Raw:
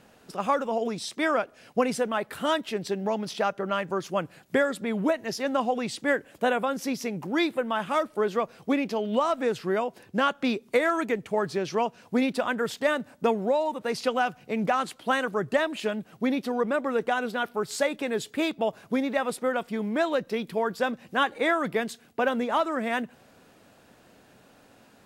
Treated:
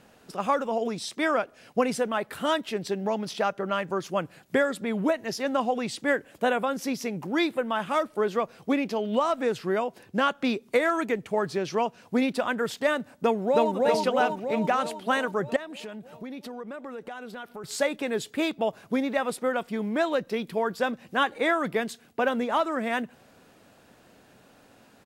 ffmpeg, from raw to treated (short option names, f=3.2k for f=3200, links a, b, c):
-filter_complex "[0:a]asplit=2[a][b];[b]afade=t=in:st=13.15:d=0.01,afade=t=out:st=13.75:d=0.01,aecho=0:1:320|640|960|1280|1600|1920|2240|2560|2880|3200|3520:0.944061|0.61364|0.398866|0.259263|0.168521|0.109538|0.0712|0.04628|0.030082|0.0195533|0.0127096[c];[a][c]amix=inputs=2:normalize=0,asettb=1/sr,asplit=3[d][e][f];[d]atrim=end=15.564[g];[e]atrim=start=15.56:end=17.64,asetpts=PTS-STARTPTS,afade=t=in:d=0.004:c=qsin,afade=t=out:st=2.076:d=0.004:c=qsin,acompressor=threshold=-37dB:ratio=4:attack=3.2:release=140:knee=1:detection=peak[h];[f]atrim=start=17.636[i];[g][h]acrossfade=d=0.004:c1=hsin:c2=qsin[j];[j][i]acrossfade=d=0.004:c1=qsin:c2=hsin"